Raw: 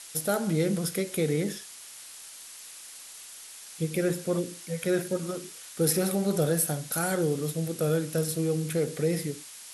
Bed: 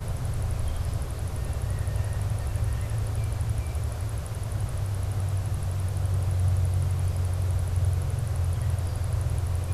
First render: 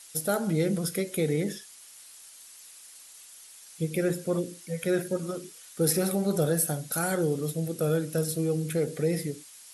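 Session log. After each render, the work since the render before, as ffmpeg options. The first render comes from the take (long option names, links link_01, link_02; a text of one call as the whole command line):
ffmpeg -i in.wav -af "afftdn=noise_reduction=7:noise_floor=-46" out.wav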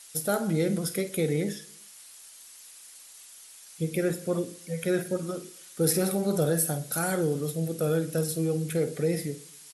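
ffmpeg -i in.wav -filter_complex "[0:a]asplit=2[link_01][link_02];[link_02]adelay=49,volume=-13dB[link_03];[link_01][link_03]amix=inputs=2:normalize=0,aecho=1:1:122|244|366:0.0708|0.0311|0.0137" out.wav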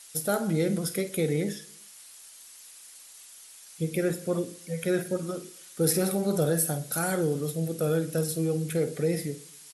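ffmpeg -i in.wav -af anull out.wav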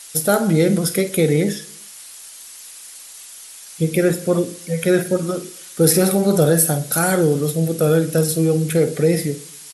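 ffmpeg -i in.wav -af "volume=10.5dB,alimiter=limit=-1dB:level=0:latency=1" out.wav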